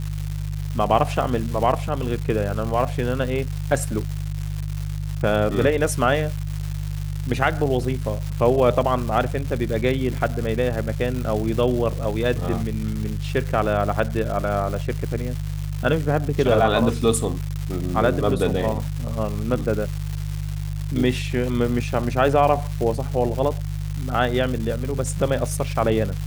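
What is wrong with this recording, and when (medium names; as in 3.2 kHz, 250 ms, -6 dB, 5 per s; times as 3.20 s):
crackle 380 per s -28 dBFS
hum 50 Hz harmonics 3 -27 dBFS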